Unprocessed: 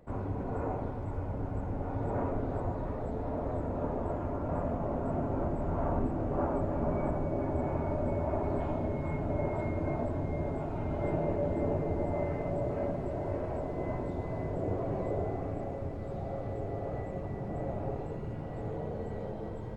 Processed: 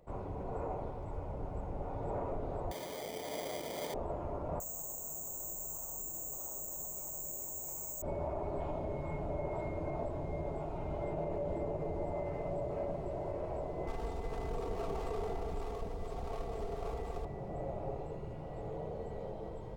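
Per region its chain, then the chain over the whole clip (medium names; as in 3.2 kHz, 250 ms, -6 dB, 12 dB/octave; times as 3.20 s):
2.71–3.94 s: high-pass 220 Hz + sample-rate reducer 2.7 kHz
4.60–8.02 s: treble shelf 2.4 kHz +11 dB + band-stop 2.3 kHz, Q 13 + careless resampling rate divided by 6×, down filtered, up zero stuff
13.87–17.25 s: comb filter that takes the minimum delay 2.5 ms + tone controls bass +5 dB, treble +7 dB + comb 4.4 ms, depth 54%
whole clip: fifteen-band graphic EQ 100 Hz -8 dB, 250 Hz -10 dB, 1.6 kHz -8 dB; peak limiter -27 dBFS; trim -1.5 dB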